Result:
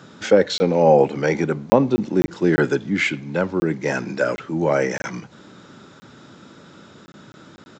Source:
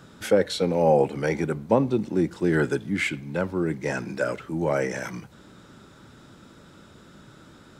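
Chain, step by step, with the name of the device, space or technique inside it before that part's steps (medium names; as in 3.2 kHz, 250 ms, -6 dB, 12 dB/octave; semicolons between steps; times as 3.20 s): call with lost packets (high-pass 130 Hz 12 dB/octave; resampled via 16 kHz; lost packets); trim +5.5 dB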